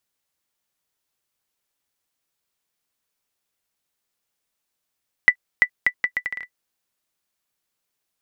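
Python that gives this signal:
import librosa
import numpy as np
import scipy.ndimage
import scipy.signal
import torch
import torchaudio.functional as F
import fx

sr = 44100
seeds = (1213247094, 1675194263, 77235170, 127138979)

y = fx.bouncing_ball(sr, first_gap_s=0.34, ratio=0.72, hz=1980.0, decay_ms=75.0, level_db=-1.5)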